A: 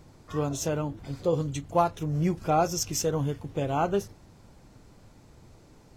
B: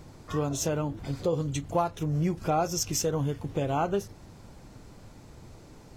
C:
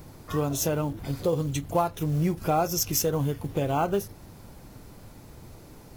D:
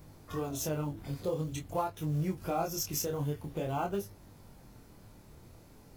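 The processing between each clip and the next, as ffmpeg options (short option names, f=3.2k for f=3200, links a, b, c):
-af "acompressor=threshold=-33dB:ratio=2,volume=4.5dB"
-af "aexciter=amount=4.6:drive=3.1:freq=10k,acrusher=bits=7:mode=log:mix=0:aa=0.000001,volume=2dB"
-af "flanger=delay=20:depth=7.8:speed=0.48,volume=-5dB"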